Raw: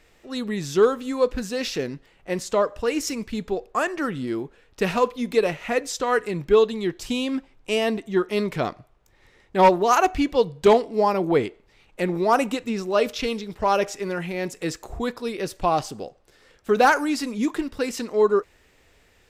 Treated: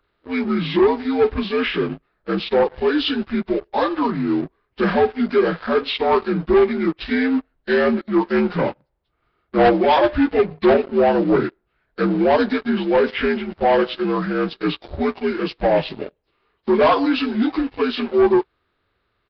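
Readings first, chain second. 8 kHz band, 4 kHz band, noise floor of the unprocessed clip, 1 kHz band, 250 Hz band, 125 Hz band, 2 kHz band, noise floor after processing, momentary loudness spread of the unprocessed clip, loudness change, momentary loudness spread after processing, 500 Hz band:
under -25 dB, +4.5 dB, -59 dBFS, +1.5 dB, +7.0 dB, +4.0 dB, +3.5 dB, -71 dBFS, 12 LU, +4.0 dB, 9 LU, +4.0 dB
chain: inharmonic rescaling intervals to 80%; sample leveller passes 3; downsampling 11025 Hz; gain -3.5 dB

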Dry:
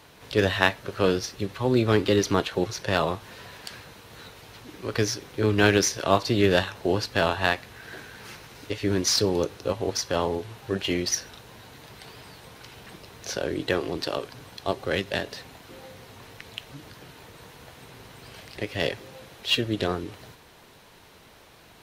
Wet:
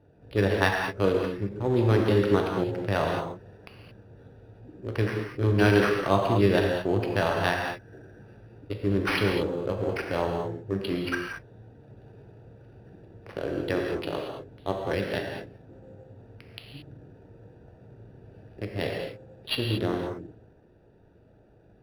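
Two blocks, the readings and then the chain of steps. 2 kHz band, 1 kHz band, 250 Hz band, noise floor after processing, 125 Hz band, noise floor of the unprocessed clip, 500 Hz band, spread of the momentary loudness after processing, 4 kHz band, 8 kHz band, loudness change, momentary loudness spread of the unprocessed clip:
-2.0 dB, -1.0 dB, 0.0 dB, -57 dBFS, +2.0 dB, -53 dBFS, -0.5 dB, 18 LU, -7.0 dB, -18.0 dB, -1.5 dB, 23 LU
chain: Wiener smoothing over 41 samples; non-linear reverb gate 0.25 s flat, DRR 0.5 dB; decimation joined by straight lines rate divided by 6×; gain -2.5 dB

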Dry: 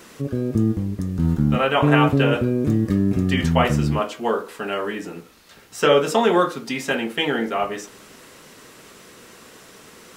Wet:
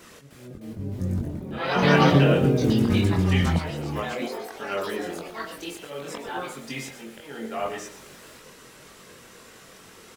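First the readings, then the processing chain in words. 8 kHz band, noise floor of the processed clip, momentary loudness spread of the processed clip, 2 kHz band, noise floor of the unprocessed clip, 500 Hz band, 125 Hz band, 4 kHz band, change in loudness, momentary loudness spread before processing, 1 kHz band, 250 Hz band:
-3.5 dB, -49 dBFS, 19 LU, -4.0 dB, -47 dBFS, -5.5 dB, -2.0 dB, -4.5 dB, -4.0 dB, 11 LU, -5.5 dB, -4.5 dB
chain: auto swell 0.665 s; echoes that change speed 0.306 s, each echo +4 st, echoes 3; on a send: echo 0.12 s -11.5 dB; on the sum: chorus voices 4, 0.81 Hz, delay 22 ms, depth 1.3 ms

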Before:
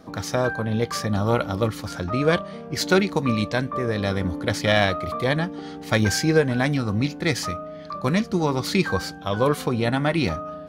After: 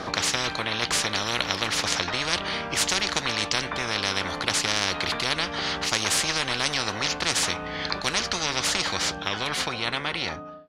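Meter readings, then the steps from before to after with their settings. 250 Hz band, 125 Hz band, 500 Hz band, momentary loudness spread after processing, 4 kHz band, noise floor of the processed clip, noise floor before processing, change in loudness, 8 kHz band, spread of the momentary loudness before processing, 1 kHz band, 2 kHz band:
-11.5 dB, -13.0 dB, -9.5 dB, 4 LU, +7.0 dB, -35 dBFS, -38 dBFS, -1.5 dB, +7.5 dB, 7 LU, -1.5 dB, +1.0 dB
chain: ending faded out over 2.73 s; LPF 5200 Hz 12 dB/oct; low shelf 220 Hz -8.5 dB; spectral compressor 10:1

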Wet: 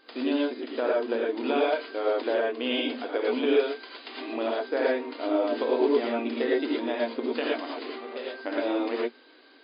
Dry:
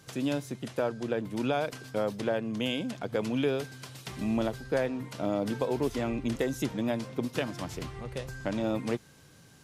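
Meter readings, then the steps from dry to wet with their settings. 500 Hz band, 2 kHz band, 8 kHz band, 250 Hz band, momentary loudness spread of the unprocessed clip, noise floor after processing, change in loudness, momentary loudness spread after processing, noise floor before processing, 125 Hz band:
+6.0 dB, +5.5 dB, under -35 dB, +2.0 dB, 7 LU, -55 dBFS, +4.0 dB, 11 LU, -56 dBFS, under -20 dB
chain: FFT band-pass 230–5000 Hz; non-linear reverb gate 0.14 s rising, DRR -4 dB

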